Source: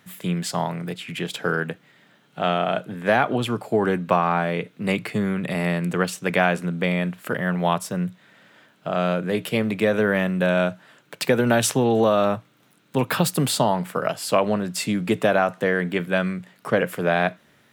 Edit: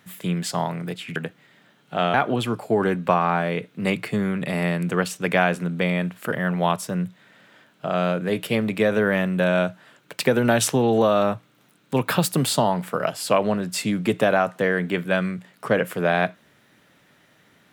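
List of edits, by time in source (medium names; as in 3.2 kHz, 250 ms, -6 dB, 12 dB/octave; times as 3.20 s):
1.16–1.61 s: delete
2.59–3.16 s: delete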